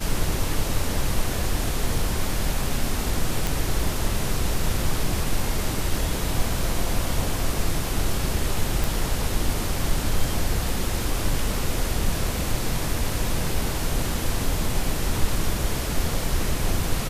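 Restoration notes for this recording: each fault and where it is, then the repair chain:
3.47 s: pop
8.84 s: pop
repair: de-click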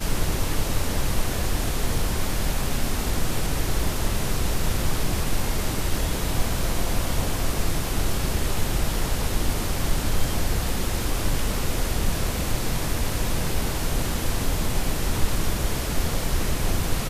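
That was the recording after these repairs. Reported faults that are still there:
nothing left

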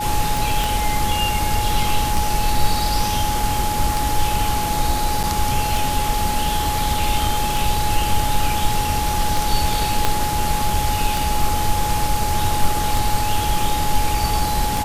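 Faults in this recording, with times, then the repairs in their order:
tick 33 1/3 rpm
whine 840 Hz -22 dBFS
0.64 s: pop
5.23–5.24 s: dropout 7.2 ms
10.05 s: pop -2 dBFS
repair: de-click; band-stop 840 Hz, Q 30; interpolate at 5.23 s, 7.2 ms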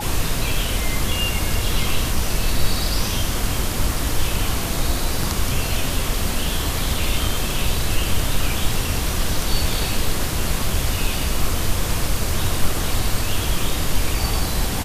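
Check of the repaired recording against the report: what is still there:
0.64 s: pop
10.05 s: pop

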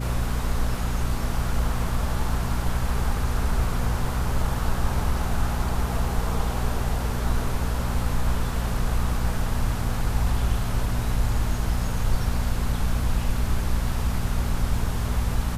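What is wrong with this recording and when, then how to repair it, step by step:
hum 60 Hz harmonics 4 -28 dBFS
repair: de-hum 60 Hz, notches 4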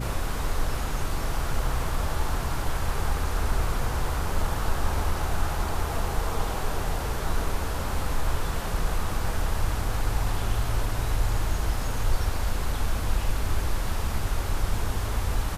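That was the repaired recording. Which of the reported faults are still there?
nothing left

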